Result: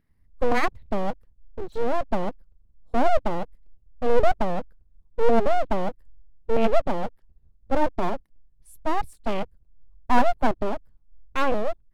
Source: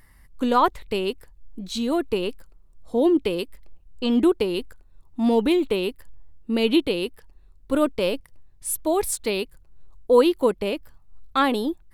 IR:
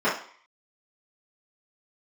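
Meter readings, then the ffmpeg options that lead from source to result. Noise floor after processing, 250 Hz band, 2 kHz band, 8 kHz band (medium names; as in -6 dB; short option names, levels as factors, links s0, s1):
-61 dBFS, -7.5 dB, 0.0 dB, under -15 dB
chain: -filter_complex "[0:a]afwtdn=0.0355,equalizer=f=160:w=0.45:g=14,acrossover=split=7000[s0][s1];[s0]aeval=exprs='abs(val(0))':c=same[s2];[s1]flanger=delay=4.3:depth=4.7:regen=33:speed=0.39:shape=triangular[s3];[s2][s3]amix=inputs=2:normalize=0,volume=0.531"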